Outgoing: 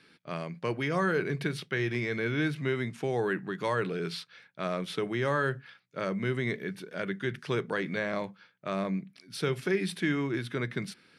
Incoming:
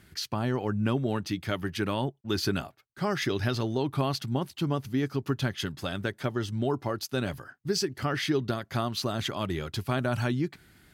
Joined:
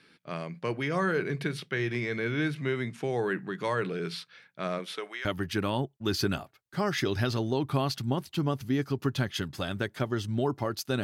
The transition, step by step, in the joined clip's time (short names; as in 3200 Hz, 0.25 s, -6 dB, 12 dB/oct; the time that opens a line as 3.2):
outgoing
4.78–5.25 HPF 240 Hz -> 1400 Hz
5.25 switch to incoming from 1.49 s